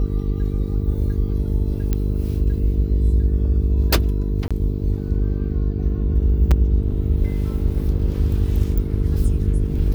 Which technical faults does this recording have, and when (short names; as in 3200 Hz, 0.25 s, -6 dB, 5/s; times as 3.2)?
buzz 50 Hz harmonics 9 -23 dBFS
1.93 pop -9 dBFS
4.48–4.51 gap 26 ms
6.51–6.52 gap 5.2 ms